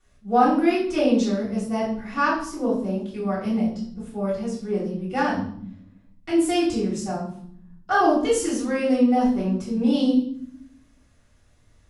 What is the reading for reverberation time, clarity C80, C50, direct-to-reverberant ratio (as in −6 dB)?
0.65 s, 8.5 dB, 4.5 dB, −10.5 dB